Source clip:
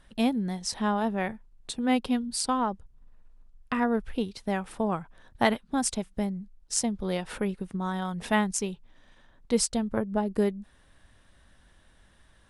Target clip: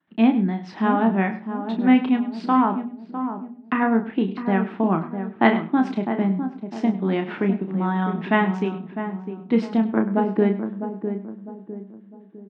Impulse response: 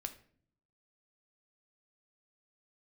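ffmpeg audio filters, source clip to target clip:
-filter_complex "[0:a]agate=range=0.0224:threshold=0.00501:ratio=3:detection=peak,highpass=f=160:w=0.5412,highpass=f=160:w=1.3066,equalizer=f=170:t=q:w=4:g=4,equalizer=f=320:t=q:w=4:g=9,equalizer=f=520:t=q:w=4:g=-9,lowpass=f=2700:w=0.5412,lowpass=f=2700:w=1.3066,asplit=2[s0][s1];[s1]adelay=31,volume=0.447[s2];[s0][s2]amix=inputs=2:normalize=0,asplit=2[s3][s4];[s4]adelay=654,lowpass=f=820:p=1,volume=0.422,asplit=2[s5][s6];[s6]adelay=654,lowpass=f=820:p=1,volume=0.43,asplit=2[s7][s8];[s8]adelay=654,lowpass=f=820:p=1,volume=0.43,asplit=2[s9][s10];[s10]adelay=654,lowpass=f=820:p=1,volume=0.43,asplit=2[s11][s12];[s12]adelay=654,lowpass=f=820:p=1,volume=0.43[s13];[s3][s5][s7][s9][s11][s13]amix=inputs=6:normalize=0,asplit=2[s14][s15];[1:a]atrim=start_sample=2205,afade=t=out:st=0.14:d=0.01,atrim=end_sample=6615,adelay=100[s16];[s15][s16]afir=irnorm=-1:irlink=0,volume=0.251[s17];[s14][s17]amix=inputs=2:normalize=0,volume=2"

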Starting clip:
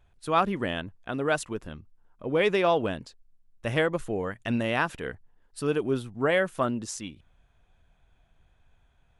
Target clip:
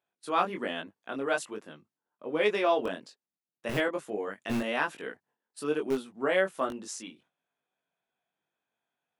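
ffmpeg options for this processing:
-filter_complex "[0:a]agate=range=0.282:threshold=0.00178:ratio=16:detection=peak,acrossover=split=200[s0][s1];[s0]acrusher=bits=4:mix=0:aa=0.000001[s2];[s2][s1]amix=inputs=2:normalize=0,flanger=delay=19:depth=3.3:speed=1.2"

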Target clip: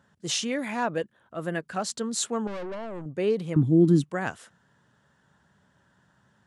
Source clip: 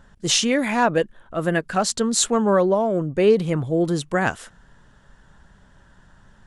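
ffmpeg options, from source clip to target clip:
-filter_complex "[0:a]highpass=f=92:w=0.5412,highpass=f=92:w=1.3066,asettb=1/sr,asplit=3[s0][s1][s2];[s0]atrim=end=2.474[s3];[s1]atrim=start=2.47:end=3.06,asetpts=PTS-STARTPTS,afade=t=in:d=0.004:c=qsin,afade=t=out:st=0.586:d=0.004:c=qsin,aeval=exprs='(tanh(15.8*val(0)+0.45)-tanh(0.45))/15.8':c=same[s4];[s2]atrim=start=3.056[s5];[s3][s4]acrossfade=d=0.004:c1=hsin:c2=qsin[s6];[s6][s5]acrossfade=d=0.004:c1=qsin:c2=hsin,asettb=1/sr,asplit=3[s7][s8][s9];[s7]atrim=end=3.564[s10];[s8]atrim=start=3.56:end=4.04,asetpts=PTS-STARTPTS,afade=t=in:d=0.004:c=qsin,afade=t=out:st=0.476:d=0.004:c=qsin,lowshelf=f=390:t=q:w=3:g=11[s11];[s9]atrim=start=4.036[s12];[s10][s11]acrossfade=d=0.004:c1=hsin:c2=qsin[s13];[s13][s12]acrossfade=d=0.004:c1=qsin:c2=hsin,volume=0.355"

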